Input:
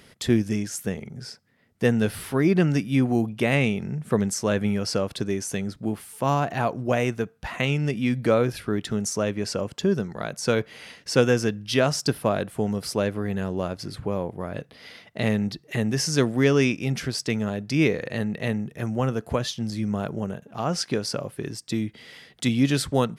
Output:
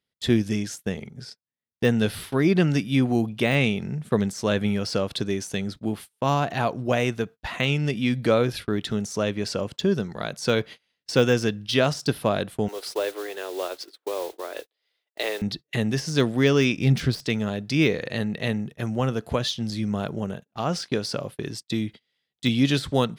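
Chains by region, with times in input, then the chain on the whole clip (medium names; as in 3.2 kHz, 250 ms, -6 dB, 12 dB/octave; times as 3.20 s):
12.68–15.42 s: steep high-pass 330 Hz 48 dB/octave + modulation noise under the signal 15 dB
16.77–17.25 s: self-modulated delay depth 0.059 ms + bass shelf 260 Hz +9.5 dB
whole clip: de-esser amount 65%; gate -37 dBFS, range -34 dB; peaking EQ 3.7 kHz +7.5 dB 0.76 oct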